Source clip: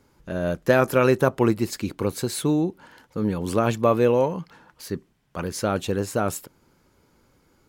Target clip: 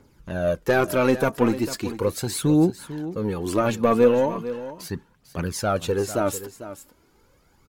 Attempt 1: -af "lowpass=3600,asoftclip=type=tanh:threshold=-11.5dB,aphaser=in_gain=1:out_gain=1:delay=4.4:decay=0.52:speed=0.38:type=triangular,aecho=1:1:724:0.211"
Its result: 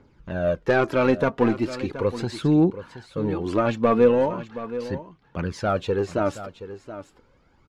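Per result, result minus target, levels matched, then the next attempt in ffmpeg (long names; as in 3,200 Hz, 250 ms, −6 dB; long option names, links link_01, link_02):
echo 276 ms late; 4,000 Hz band −3.5 dB
-af "lowpass=3600,asoftclip=type=tanh:threshold=-11.5dB,aphaser=in_gain=1:out_gain=1:delay=4.4:decay=0.52:speed=0.38:type=triangular,aecho=1:1:448:0.211"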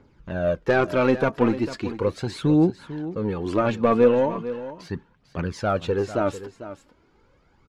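4,000 Hz band −3.5 dB
-af "asoftclip=type=tanh:threshold=-11.5dB,aphaser=in_gain=1:out_gain=1:delay=4.4:decay=0.52:speed=0.38:type=triangular,aecho=1:1:448:0.211"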